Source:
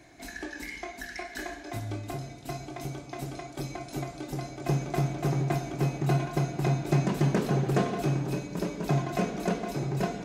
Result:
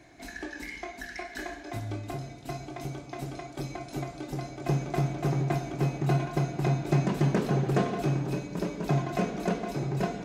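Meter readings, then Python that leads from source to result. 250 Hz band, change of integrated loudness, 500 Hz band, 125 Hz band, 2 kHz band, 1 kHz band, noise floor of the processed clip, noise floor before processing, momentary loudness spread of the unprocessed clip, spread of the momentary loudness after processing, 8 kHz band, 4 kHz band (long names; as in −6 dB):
0.0 dB, 0.0 dB, 0.0 dB, 0.0 dB, −0.5 dB, 0.0 dB, −45 dBFS, −45 dBFS, 12 LU, 12 LU, −3.0 dB, −1.5 dB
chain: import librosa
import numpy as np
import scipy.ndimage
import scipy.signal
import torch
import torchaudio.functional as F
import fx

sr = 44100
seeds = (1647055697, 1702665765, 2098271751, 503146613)

y = fx.high_shelf(x, sr, hz=6500.0, db=-5.5)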